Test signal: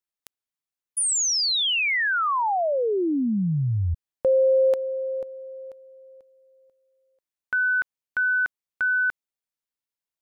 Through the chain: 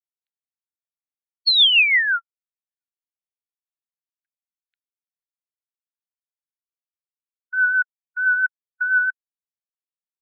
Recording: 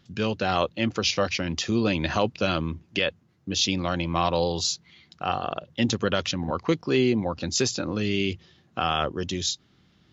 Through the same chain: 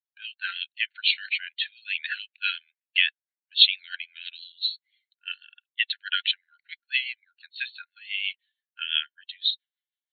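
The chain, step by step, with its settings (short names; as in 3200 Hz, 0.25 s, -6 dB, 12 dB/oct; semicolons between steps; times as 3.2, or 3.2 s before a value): per-bin expansion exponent 1.5; dynamic EQ 3100 Hz, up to +6 dB, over -41 dBFS, Q 0.73; brick-wall FIR band-pass 1400–4400 Hz; rotary speaker horn 6 Hz; three-band expander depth 40%; gain +4 dB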